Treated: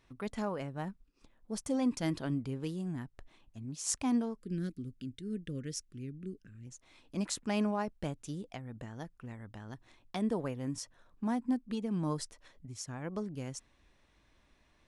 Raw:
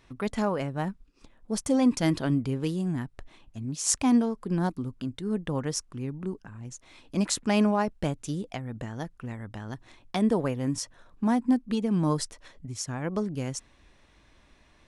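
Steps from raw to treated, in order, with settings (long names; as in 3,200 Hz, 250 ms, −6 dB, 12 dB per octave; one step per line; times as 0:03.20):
0:04.39–0:06.67: Butterworth band-reject 870 Hz, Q 0.66
level −8.5 dB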